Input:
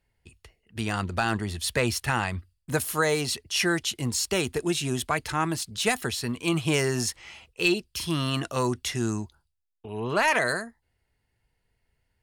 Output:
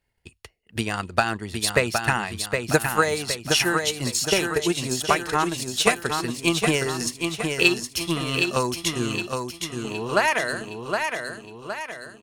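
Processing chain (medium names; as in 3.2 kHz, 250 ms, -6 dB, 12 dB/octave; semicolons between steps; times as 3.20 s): bass shelf 210 Hz -5 dB; transient shaper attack +9 dB, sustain -5 dB; feedback delay 765 ms, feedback 47%, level -5 dB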